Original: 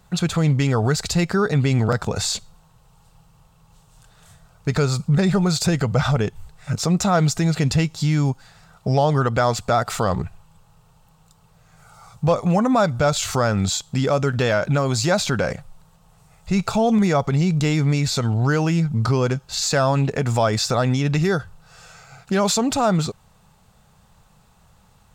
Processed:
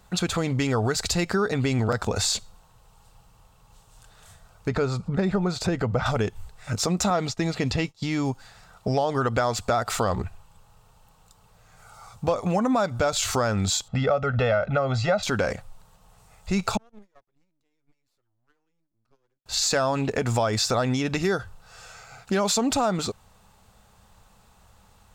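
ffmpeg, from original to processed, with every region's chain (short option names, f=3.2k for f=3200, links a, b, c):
-filter_complex "[0:a]asettb=1/sr,asplit=3[a][b][c];[a]atrim=end=4.684[d];[b]atrim=start=4.68:end=6.06,asetpts=PTS-STARTPTS,afade=t=in:d=0.004:c=qsin,afade=t=out:st=1.376:d=0.004:c=qsin,lowpass=f=1.6k:p=1,acompressor=mode=upward:threshold=-24dB:ratio=2.5:attack=3.2:release=140:knee=2.83:detection=peak[e];[c]atrim=start=6.056[f];[d][e]acrossfade=d=0.004:c1=hsin:c2=qsin[g];[g][f]acrossfade=d=0.004:c1=qsin:c2=hsin,asettb=1/sr,asplit=3[h][i][j];[h]atrim=end=7.104[k];[i]atrim=start=7.1:end=8.31,asetpts=PTS-STARTPTS,afade=t=in:d=0.004:c=qsin,afade=t=out:st=1.206:d=0.004:c=qsin,bandreject=f=1.5k:w=11,acrossover=split=5300[l][m];[m]acompressor=threshold=-45dB:ratio=4:attack=1:release=60[n];[l][n]amix=inputs=2:normalize=0,agate=range=-33dB:threshold=-26dB:ratio=3:release=100:detection=peak[o];[j]atrim=start=8.306[p];[k][o]acrossfade=d=0.004:c1=hsin:c2=qsin[q];[q][p]acrossfade=d=0.004:c1=qsin:c2=hsin,asettb=1/sr,asplit=3[r][s][t];[r]atrim=end=13.884[u];[s]atrim=start=13.88:end=15.23,asetpts=PTS-STARTPTS,afade=t=in:d=0.004:c=qsin,afade=t=out:st=1.346:d=0.004:c=qsin,lowpass=2.4k,aecho=1:1:1.5:0.87,atrim=end_sample=59535[v];[t]atrim=start=15.226[w];[u][v]acrossfade=d=0.004:c1=hsin:c2=qsin[x];[x][w]acrossfade=d=0.004:c1=qsin:c2=hsin,asettb=1/sr,asplit=3[y][z][aa];[y]atrim=end=16.774[ab];[z]atrim=start=16.77:end=19.46,asetpts=PTS-STARTPTS,afade=t=in:d=0.004:c=qsin,afade=t=out:st=2.686:d=0.004:c=qsin,agate=range=-49dB:threshold=-13dB:ratio=16:release=100:detection=peak,aeval=exprs='max(val(0),0)':c=same[ac];[aa]atrim=start=19.456[ad];[ab][ac]acrossfade=d=0.004:c1=hsin:c2=qsin[ae];[ae][ad]acrossfade=d=0.004:c1=qsin:c2=hsin,equalizer=f=150:t=o:w=0.33:g=-14,acompressor=threshold=-19dB:ratio=6"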